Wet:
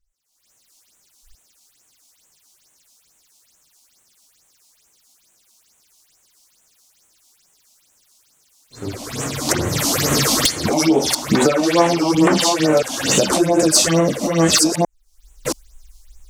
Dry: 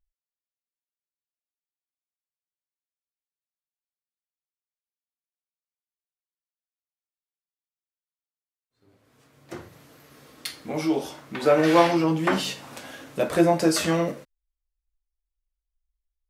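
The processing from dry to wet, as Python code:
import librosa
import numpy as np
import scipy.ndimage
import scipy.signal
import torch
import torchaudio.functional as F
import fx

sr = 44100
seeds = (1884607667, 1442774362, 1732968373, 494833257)

p1 = fx.reverse_delay(x, sr, ms=675, wet_db=-5.5)
p2 = fx.recorder_agc(p1, sr, target_db=-10.5, rise_db_per_s=59.0, max_gain_db=30)
p3 = fx.peak_eq(p2, sr, hz=6000.0, db=10.5, octaves=1.6)
p4 = fx.fold_sine(p3, sr, drive_db=19, ceiling_db=15.5)
p5 = p3 + (p4 * 10.0 ** (-5.5 / 20.0))
p6 = fx.phaser_stages(p5, sr, stages=6, low_hz=110.0, high_hz=4800.0, hz=2.3, feedback_pct=25)
y = p6 * 10.0 ** (-14.5 / 20.0)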